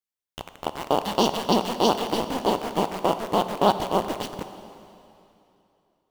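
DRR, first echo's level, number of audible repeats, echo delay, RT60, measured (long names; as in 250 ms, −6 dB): 9.5 dB, no echo audible, no echo audible, no echo audible, 2.9 s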